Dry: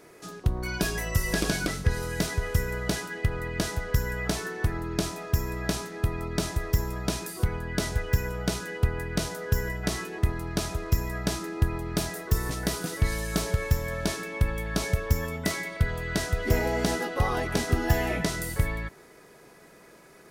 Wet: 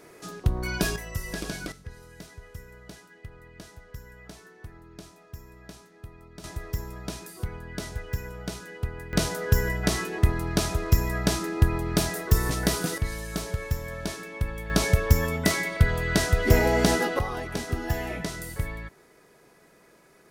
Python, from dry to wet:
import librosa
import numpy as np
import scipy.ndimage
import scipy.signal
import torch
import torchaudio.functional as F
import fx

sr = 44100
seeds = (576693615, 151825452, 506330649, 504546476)

y = fx.gain(x, sr, db=fx.steps((0.0, 1.5), (0.96, -7.0), (1.72, -17.0), (6.44, -6.5), (9.13, 4.0), (12.98, -4.0), (14.7, 5.0), (17.19, -4.5)))